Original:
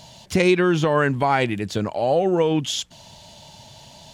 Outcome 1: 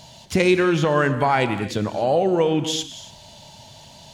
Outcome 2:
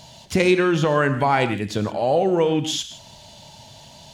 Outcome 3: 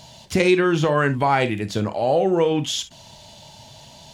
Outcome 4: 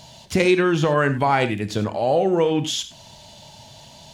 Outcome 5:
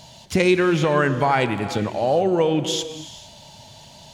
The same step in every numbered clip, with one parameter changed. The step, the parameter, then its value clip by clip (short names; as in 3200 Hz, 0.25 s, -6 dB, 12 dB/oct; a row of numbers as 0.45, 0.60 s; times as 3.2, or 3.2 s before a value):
non-linear reverb, gate: 310, 190, 80, 120, 490 ms